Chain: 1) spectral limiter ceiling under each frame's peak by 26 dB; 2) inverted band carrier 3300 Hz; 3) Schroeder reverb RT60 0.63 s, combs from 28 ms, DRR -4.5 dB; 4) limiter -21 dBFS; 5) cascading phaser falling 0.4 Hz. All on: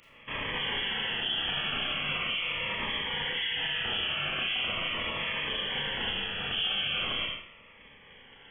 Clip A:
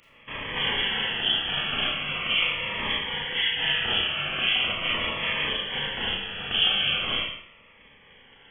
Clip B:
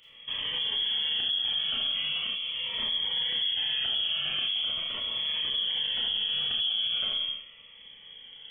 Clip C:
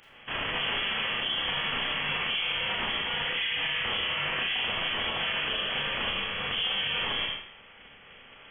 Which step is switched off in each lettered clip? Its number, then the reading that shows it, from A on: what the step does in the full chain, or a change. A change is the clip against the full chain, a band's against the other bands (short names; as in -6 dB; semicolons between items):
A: 4, mean gain reduction 3.0 dB; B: 1, 2 kHz band +2.0 dB; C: 5, 125 Hz band -2.0 dB